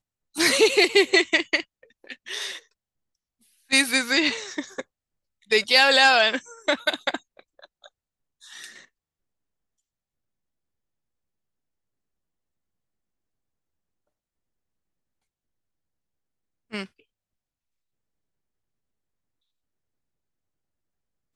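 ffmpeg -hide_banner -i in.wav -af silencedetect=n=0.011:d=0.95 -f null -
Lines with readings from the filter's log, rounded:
silence_start: 2.59
silence_end: 3.71 | silence_duration: 1.12
silence_start: 8.81
silence_end: 16.72 | silence_duration: 7.92
silence_start: 16.85
silence_end: 21.35 | silence_duration: 4.50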